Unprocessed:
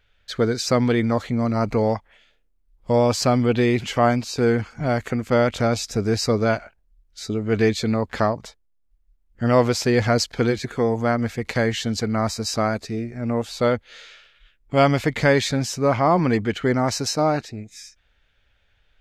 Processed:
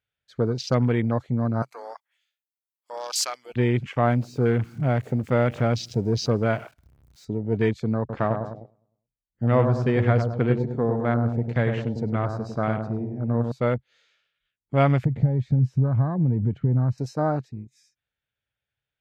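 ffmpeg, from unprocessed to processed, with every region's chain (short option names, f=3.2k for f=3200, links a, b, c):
-filter_complex "[0:a]asettb=1/sr,asplit=3[a][b][c];[a]atrim=end=1.624[d];[b]atrim=start=1.62:end=3.56,asetpts=PTS-STARTPTS,afade=t=in:d=0.004:c=qsin,afade=t=out:st=1.936:d=0.004:c=qsin,highpass=1.1k,aemphasis=mode=production:type=75fm,volume=15.5dB,asoftclip=hard,volume=-15.5dB[e];[c]atrim=start=3.556[f];[d][e]acrossfade=d=0.004:c1=hsin:c2=qsin[g];[g][f]acrossfade=d=0.004:c1=qsin:c2=hsin,asettb=1/sr,asplit=3[h][i][j];[h]atrim=end=4.074[k];[i]atrim=start=4.07:end=7.25,asetpts=PTS-STARTPTS,afade=t=in:d=0.004:c=qsin,afade=t=out:st=3.176:d=0.004:c=qsin,aeval=exprs='val(0)+0.5*0.0266*sgn(val(0))':c=same,aecho=1:1:163:0.0668,atrim=end_sample=140238[l];[j]atrim=start=7.246[m];[k][l]acrossfade=d=0.004:c1=hsin:c2=qsin[n];[n][m]acrossfade=d=0.004:c1=qsin:c2=hsin,asettb=1/sr,asplit=3[o][p][q];[o]atrim=end=7.994[r];[p]atrim=start=7.99:end=13.52,asetpts=PTS-STARTPTS,afade=t=in:d=0.004:c=qsin,afade=t=out:st=5.526:d=0.004:c=qsin,equalizer=f=11k:t=o:w=1.3:g=-11.5,asplit=2[s][t];[t]adelay=102,lowpass=f=1.4k:p=1,volume=-5dB,asplit=2[u][v];[v]adelay=102,lowpass=f=1.4k:p=1,volume=0.53,asplit=2[w][x];[x]adelay=102,lowpass=f=1.4k:p=1,volume=0.53,asplit=2[y][z];[z]adelay=102,lowpass=f=1.4k:p=1,volume=0.53,asplit=2[aa][ab];[ab]adelay=102,lowpass=f=1.4k:p=1,volume=0.53,asplit=2[ac][ad];[ad]adelay=102,lowpass=f=1.4k:p=1,volume=0.53,asplit=2[ae][af];[af]adelay=102,lowpass=f=1.4k:p=1,volume=0.53[ag];[s][u][w][y][aa][ac][ae][ag]amix=inputs=8:normalize=0,atrim=end_sample=243873[ah];[q]atrim=start=13.516[ai];[r][ah]acrossfade=d=0.004:c1=hsin:c2=qsin[aj];[aj][ai]acrossfade=d=0.004:c1=qsin:c2=hsin,asettb=1/sr,asplit=3[ak][al][am];[ak]atrim=end=15.054[an];[al]atrim=start=15.05:end=16.98,asetpts=PTS-STARTPTS,afade=t=in:d=0.004:c=qsin,afade=t=out:st=1.926:d=0.004:c=qsin,acompressor=threshold=-27dB:ratio=4:attack=3.2:release=140:knee=1:detection=peak,bass=f=250:g=14,treble=f=4k:g=-13[ao];[am]atrim=start=16.976[ap];[an][ao]acrossfade=d=0.004:c1=hsin:c2=qsin[aq];[aq][ap]acrossfade=d=0.004:c1=qsin:c2=hsin,highpass=86,afwtdn=0.0355,equalizer=f=130:t=o:w=0.54:g=9,volume=-4.5dB"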